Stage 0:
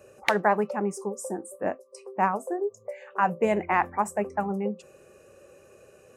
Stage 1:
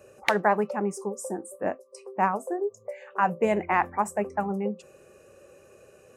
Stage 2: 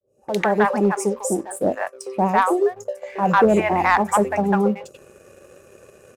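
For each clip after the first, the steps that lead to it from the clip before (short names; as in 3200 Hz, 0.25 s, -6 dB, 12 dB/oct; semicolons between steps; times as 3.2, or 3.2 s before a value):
nothing audible
opening faded in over 0.73 s; three bands offset in time lows, highs, mids 60/150 ms, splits 760/3400 Hz; sample leveller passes 1; gain +7 dB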